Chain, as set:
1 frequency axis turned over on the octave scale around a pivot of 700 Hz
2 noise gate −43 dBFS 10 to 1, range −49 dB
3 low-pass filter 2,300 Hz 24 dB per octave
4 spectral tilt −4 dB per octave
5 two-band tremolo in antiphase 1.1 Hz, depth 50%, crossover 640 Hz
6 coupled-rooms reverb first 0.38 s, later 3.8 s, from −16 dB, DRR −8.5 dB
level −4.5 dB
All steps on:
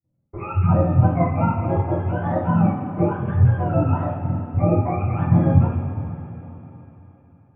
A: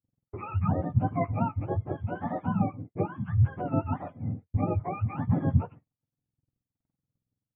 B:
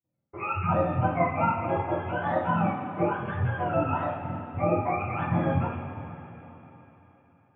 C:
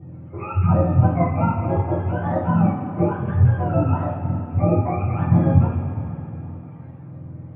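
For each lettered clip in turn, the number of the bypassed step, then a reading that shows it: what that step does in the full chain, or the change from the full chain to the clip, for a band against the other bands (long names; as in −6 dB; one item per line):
6, change in integrated loudness −9.5 LU
4, 125 Hz band −10.0 dB
2, change in momentary loudness spread +7 LU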